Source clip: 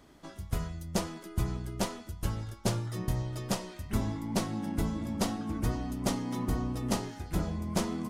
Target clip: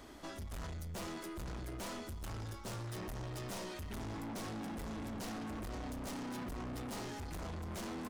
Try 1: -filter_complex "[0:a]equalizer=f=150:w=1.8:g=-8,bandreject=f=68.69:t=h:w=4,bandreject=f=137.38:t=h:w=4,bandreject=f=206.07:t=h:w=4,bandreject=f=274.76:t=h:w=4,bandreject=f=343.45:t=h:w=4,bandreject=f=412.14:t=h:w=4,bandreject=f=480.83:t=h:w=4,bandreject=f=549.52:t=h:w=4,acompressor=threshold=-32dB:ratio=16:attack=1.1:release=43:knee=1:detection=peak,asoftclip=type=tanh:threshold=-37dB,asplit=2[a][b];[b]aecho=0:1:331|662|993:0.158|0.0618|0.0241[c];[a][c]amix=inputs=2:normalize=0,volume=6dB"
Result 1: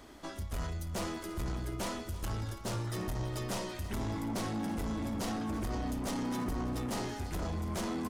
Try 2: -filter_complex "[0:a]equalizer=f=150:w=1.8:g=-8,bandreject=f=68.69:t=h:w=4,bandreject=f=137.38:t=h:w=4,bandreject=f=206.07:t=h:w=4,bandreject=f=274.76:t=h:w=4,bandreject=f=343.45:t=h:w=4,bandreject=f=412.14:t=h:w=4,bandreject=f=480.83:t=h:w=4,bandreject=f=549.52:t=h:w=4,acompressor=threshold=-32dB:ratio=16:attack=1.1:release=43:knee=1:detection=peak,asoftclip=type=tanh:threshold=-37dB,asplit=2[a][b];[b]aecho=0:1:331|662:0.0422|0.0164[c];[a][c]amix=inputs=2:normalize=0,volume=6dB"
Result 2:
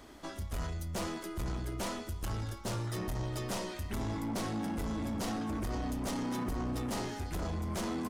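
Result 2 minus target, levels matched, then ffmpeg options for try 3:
soft clip: distortion -7 dB
-filter_complex "[0:a]equalizer=f=150:w=1.8:g=-8,bandreject=f=68.69:t=h:w=4,bandreject=f=137.38:t=h:w=4,bandreject=f=206.07:t=h:w=4,bandreject=f=274.76:t=h:w=4,bandreject=f=343.45:t=h:w=4,bandreject=f=412.14:t=h:w=4,bandreject=f=480.83:t=h:w=4,bandreject=f=549.52:t=h:w=4,acompressor=threshold=-32dB:ratio=16:attack=1.1:release=43:knee=1:detection=peak,asoftclip=type=tanh:threshold=-47dB,asplit=2[a][b];[b]aecho=0:1:331|662:0.0422|0.0164[c];[a][c]amix=inputs=2:normalize=0,volume=6dB"

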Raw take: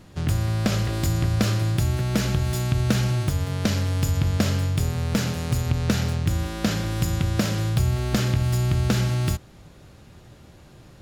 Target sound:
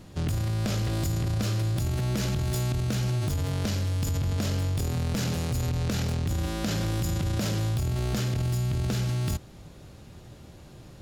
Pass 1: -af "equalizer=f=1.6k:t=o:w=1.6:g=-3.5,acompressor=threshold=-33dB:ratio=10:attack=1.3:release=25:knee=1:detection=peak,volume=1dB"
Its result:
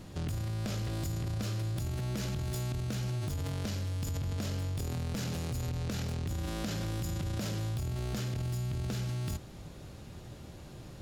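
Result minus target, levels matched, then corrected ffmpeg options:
compressor: peak gain reduction +7 dB
-af "equalizer=f=1.6k:t=o:w=1.6:g=-3.5,acompressor=threshold=-25dB:ratio=10:attack=1.3:release=25:knee=1:detection=peak,volume=1dB"

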